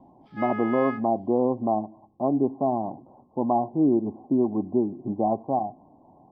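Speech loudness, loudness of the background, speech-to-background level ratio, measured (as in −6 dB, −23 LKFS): −25.5 LKFS, −35.0 LKFS, 9.5 dB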